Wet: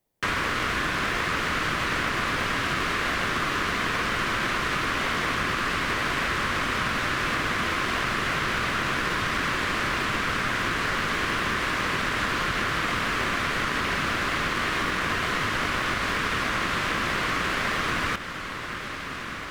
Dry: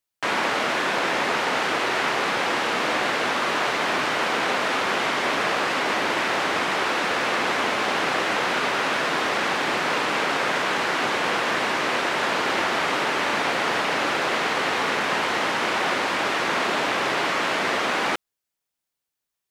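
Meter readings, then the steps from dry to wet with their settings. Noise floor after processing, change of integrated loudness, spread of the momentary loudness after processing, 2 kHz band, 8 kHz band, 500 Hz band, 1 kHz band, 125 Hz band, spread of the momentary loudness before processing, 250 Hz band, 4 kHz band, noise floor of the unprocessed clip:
−34 dBFS, −3.0 dB, 0 LU, −1.5 dB, −2.5 dB, −7.5 dB, −4.0 dB, +7.5 dB, 0 LU, −1.0 dB, −3.0 dB, −84 dBFS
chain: Butterworth high-pass 1,000 Hz 96 dB per octave
high-shelf EQ 7,600 Hz +10 dB
feedback delay with all-pass diffusion 1,304 ms, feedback 69%, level −14 dB
in parallel at −7 dB: sample-rate reduction 1,400 Hz
on the sum: high-shelf EQ 2,900 Hz −8.5 dB
downward compressor, threshold −26 dBFS, peak gain reduction 5.5 dB
level +3.5 dB

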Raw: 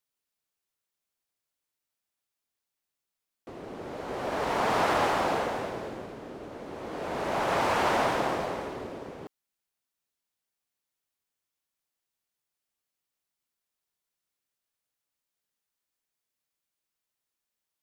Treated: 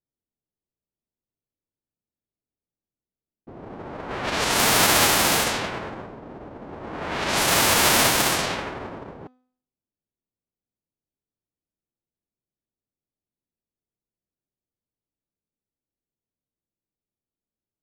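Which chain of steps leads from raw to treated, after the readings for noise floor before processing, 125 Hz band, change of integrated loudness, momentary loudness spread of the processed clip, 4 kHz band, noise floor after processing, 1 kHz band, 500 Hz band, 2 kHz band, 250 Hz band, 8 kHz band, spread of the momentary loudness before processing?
below −85 dBFS, +8.0 dB, +9.5 dB, 21 LU, +16.5 dB, below −85 dBFS, +3.0 dB, +2.0 dB, +10.0 dB, +5.5 dB, +23.0 dB, 17 LU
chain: spectral envelope flattened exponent 0.3
low-pass that shuts in the quiet parts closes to 350 Hz, open at −24 dBFS
hum removal 252.6 Hz, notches 33
level +7.5 dB

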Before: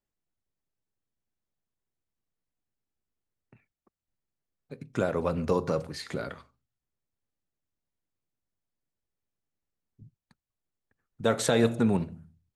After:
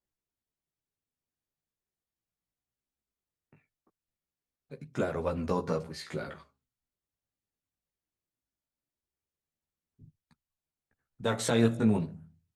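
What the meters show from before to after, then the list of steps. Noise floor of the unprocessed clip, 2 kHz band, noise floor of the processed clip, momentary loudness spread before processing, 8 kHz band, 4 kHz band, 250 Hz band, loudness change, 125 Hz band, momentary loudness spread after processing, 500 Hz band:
below −85 dBFS, −3.0 dB, below −85 dBFS, 13 LU, −3.5 dB, −3.0 dB, −1.0 dB, −2.5 dB, −1.0 dB, 14 LU, −4.0 dB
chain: multi-voice chorus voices 2, 0.2 Hz, delay 16 ms, depth 3.8 ms
harmonic generator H 2 −20 dB, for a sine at −12.5 dBFS

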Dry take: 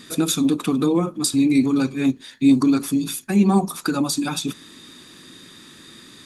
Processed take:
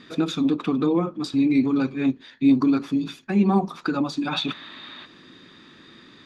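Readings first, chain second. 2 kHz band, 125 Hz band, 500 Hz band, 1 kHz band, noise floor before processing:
−1.5 dB, −3.5 dB, −1.5 dB, −1.0 dB, −46 dBFS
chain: high-frequency loss of the air 230 metres
gain on a spectral selection 0:04.32–0:05.06, 550–4,600 Hz +10 dB
low-shelf EQ 230 Hz −5 dB

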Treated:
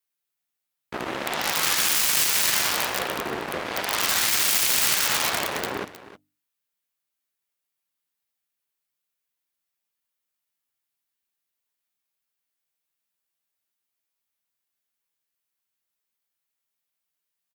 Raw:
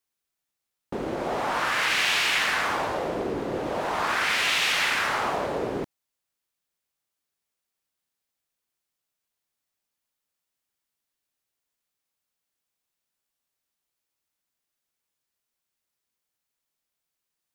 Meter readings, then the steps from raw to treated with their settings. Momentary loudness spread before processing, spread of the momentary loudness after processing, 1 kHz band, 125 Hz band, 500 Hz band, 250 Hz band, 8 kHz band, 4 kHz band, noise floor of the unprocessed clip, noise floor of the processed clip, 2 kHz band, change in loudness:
10 LU, 12 LU, −2.5 dB, −2.0 dB, −3.5 dB, −3.0 dB, +12.5 dB, +3.0 dB, −85 dBFS, −83 dBFS, −2.0 dB, +3.5 dB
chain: flanger 0.51 Hz, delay 9.5 ms, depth 6.7 ms, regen +27%
mains-hum notches 50/100/150/200/250/300 Hz
wrap-around overflow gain 23 dB
bass and treble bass +11 dB, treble −11 dB
harmonic generator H 7 −12 dB, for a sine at −19.5 dBFS
RIAA equalisation recording
on a send: single-tap delay 312 ms −15.5 dB
on the sum: level +3 dB

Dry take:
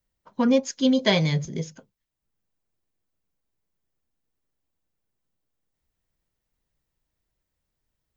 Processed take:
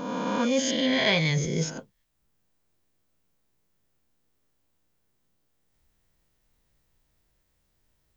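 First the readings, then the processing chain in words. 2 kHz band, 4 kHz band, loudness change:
+4.0 dB, +1.5 dB, −2.5 dB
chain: peak hold with a rise ahead of every peak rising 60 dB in 1.07 s
reversed playback
downward compressor 4 to 1, threshold −31 dBFS, peak gain reduction 15 dB
reversed playback
dynamic equaliser 2,200 Hz, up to +6 dB, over −47 dBFS, Q 0.84
level +6 dB

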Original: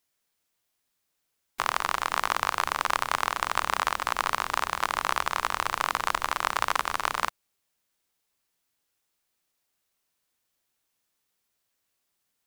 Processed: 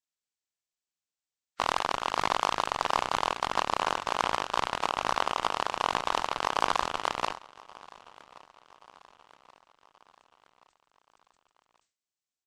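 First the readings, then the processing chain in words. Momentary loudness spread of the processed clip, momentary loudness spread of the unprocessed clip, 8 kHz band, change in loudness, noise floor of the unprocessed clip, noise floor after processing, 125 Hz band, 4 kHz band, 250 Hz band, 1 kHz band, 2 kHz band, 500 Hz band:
3 LU, 2 LU, −5.0 dB, −1.5 dB, −79 dBFS, below −85 dBFS, +0.5 dB, 0.0 dB, +4.0 dB, −1.0 dB, −5.0 dB, +4.0 dB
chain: hearing-aid frequency compression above 1,200 Hz 1.5 to 1
harmonic generator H 7 −16 dB, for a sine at −10.5 dBFS
on a send: repeating echo 1,128 ms, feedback 52%, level −22.5 dB
on the sum: harmonic and percussive parts rebalanced harmonic +4 dB
level that may fall only so fast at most 140 dB per second

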